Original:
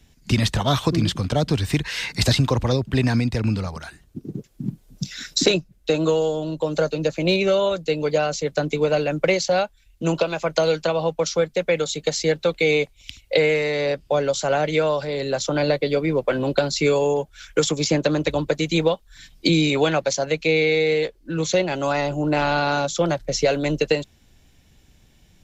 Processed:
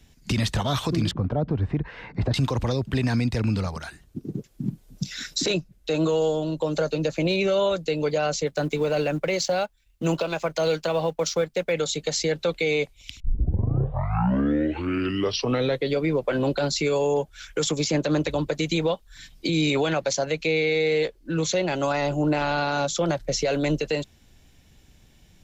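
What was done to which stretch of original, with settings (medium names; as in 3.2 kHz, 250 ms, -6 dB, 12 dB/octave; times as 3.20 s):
1.11–2.34 s: low-pass 1 kHz
8.47–11.73 s: companding laws mixed up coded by A
13.20 s: tape start 2.75 s
whole clip: peak limiter -15 dBFS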